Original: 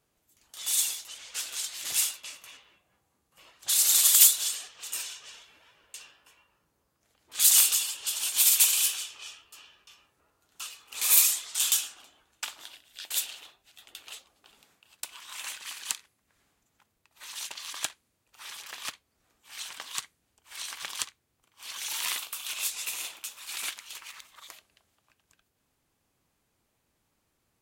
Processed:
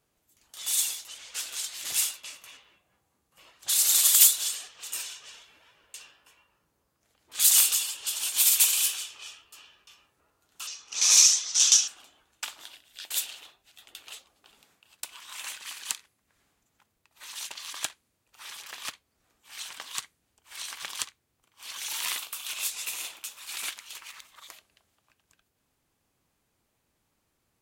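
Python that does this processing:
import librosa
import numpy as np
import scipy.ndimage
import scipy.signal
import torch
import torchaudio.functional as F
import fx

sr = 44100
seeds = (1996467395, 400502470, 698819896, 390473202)

y = fx.lowpass_res(x, sr, hz=5900.0, q=6.8, at=(10.67, 11.88))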